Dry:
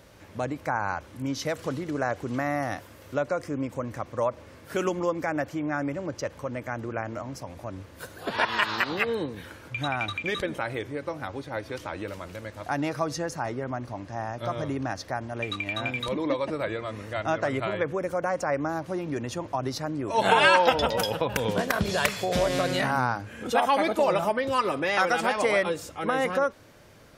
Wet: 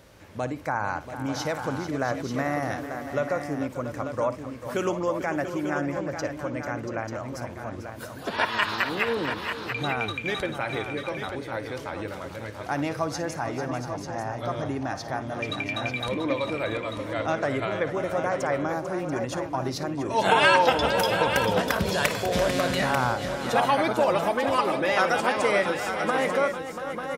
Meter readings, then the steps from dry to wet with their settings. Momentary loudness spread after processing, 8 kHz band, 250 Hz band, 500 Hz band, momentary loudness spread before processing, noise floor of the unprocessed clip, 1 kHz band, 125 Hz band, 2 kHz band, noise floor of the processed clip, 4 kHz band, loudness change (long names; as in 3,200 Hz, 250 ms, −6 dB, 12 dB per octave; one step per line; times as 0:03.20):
10 LU, +1.0 dB, +1.0 dB, +1.0 dB, 12 LU, −49 dBFS, +1.0 dB, +1.0 dB, +1.0 dB, −39 dBFS, +1.0 dB, +1.0 dB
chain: multi-tap delay 56/444/685/891 ms −14.5/−11.5/−11/−8.5 dB